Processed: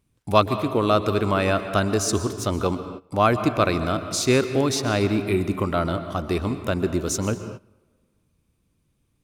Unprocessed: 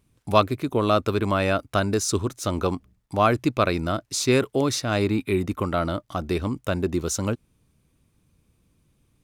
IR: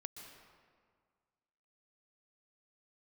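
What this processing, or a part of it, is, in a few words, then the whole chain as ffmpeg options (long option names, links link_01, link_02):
keyed gated reverb: -filter_complex "[0:a]asplit=3[link_01][link_02][link_03];[1:a]atrim=start_sample=2205[link_04];[link_02][link_04]afir=irnorm=-1:irlink=0[link_05];[link_03]apad=whole_len=407404[link_06];[link_05][link_06]sidechaingate=range=-18dB:threshold=-53dB:ratio=16:detection=peak,volume=6dB[link_07];[link_01][link_07]amix=inputs=2:normalize=0,volume=-5.5dB"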